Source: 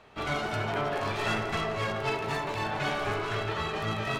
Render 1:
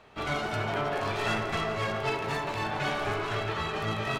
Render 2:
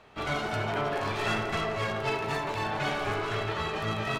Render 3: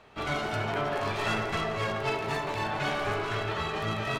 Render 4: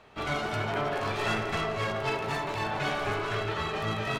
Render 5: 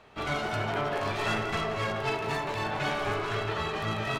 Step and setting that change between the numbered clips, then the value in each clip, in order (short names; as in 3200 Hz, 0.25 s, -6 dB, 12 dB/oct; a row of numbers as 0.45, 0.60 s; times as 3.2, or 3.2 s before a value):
speakerphone echo, time: 400, 80, 120, 270, 180 ms